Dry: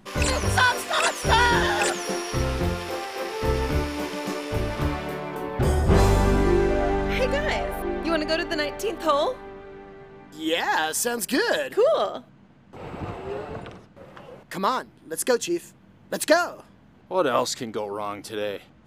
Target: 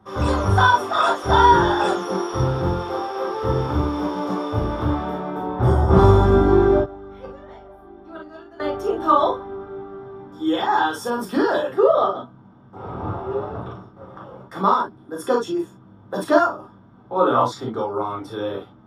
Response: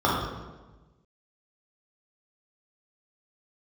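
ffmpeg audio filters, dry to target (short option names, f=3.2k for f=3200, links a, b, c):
-filter_complex "[0:a]asettb=1/sr,asplit=3[a][b][c];[a]atrim=end=6.794[d];[b]atrim=start=6.79:end=8.6,asetpts=PTS-STARTPTS,afade=t=in:d=0.004:c=qsin,afade=t=out:st=1.806:d=0.004:c=qsin,agate=range=-20dB:threshold=-18dB:ratio=16:detection=peak[e];[c]atrim=start=8.596[f];[d][e]acrossfade=d=0.004:c1=hsin:c2=qsin[g];[g][f]acrossfade=d=0.004:c1=qsin:c2=hsin[h];[1:a]atrim=start_sample=2205,atrim=end_sample=3087[i];[h][i]afir=irnorm=-1:irlink=0,volume=-13.5dB"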